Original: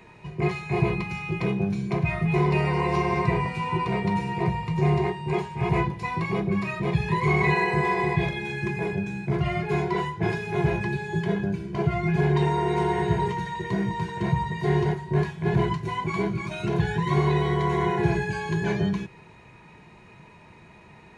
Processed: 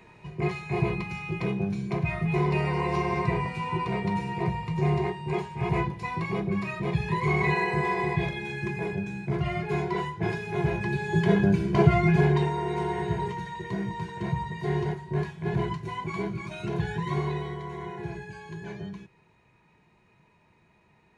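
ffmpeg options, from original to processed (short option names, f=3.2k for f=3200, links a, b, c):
-af "volume=7dB,afade=t=in:st=10.78:d=0.9:silence=0.316228,afade=t=out:st=11.68:d=0.83:silence=0.251189,afade=t=out:st=17.05:d=0.57:silence=0.398107"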